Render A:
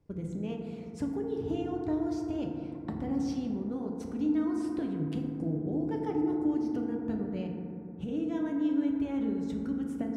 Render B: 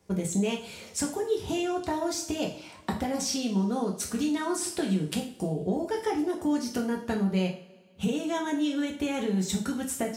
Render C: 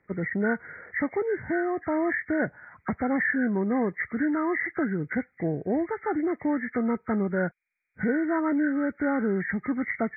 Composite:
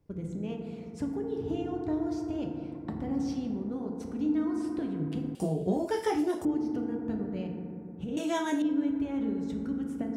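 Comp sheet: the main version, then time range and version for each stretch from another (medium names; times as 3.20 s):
A
5.35–6.45 s: from B
8.17–8.62 s: from B
not used: C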